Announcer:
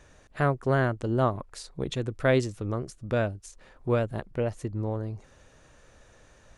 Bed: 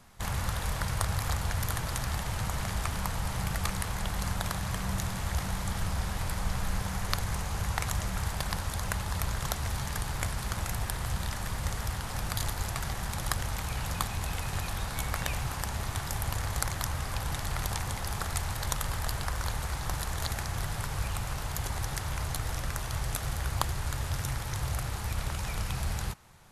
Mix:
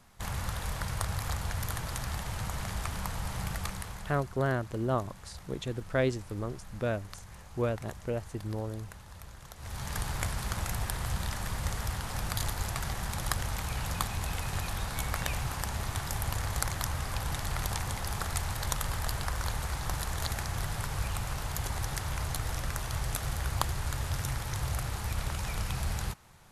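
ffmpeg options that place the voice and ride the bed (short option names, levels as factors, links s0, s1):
-filter_complex "[0:a]adelay=3700,volume=0.562[s0];[1:a]volume=4.47,afade=t=out:st=3.49:d=0.78:silence=0.211349,afade=t=in:st=9.56:d=0.43:silence=0.158489[s1];[s0][s1]amix=inputs=2:normalize=0"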